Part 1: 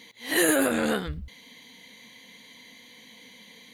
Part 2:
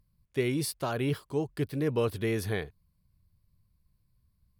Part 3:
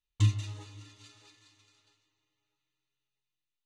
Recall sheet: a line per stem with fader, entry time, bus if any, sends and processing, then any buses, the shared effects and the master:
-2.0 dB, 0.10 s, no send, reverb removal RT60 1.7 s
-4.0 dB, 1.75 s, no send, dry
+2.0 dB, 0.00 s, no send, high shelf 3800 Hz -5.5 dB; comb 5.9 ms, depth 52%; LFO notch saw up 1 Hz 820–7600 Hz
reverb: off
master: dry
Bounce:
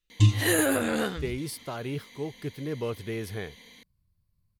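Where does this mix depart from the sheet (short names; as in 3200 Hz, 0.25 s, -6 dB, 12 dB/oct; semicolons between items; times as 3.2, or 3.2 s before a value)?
stem 1: missing reverb removal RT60 1.7 s; stem 2: entry 1.75 s -> 0.85 s; stem 3 +2.0 dB -> +8.0 dB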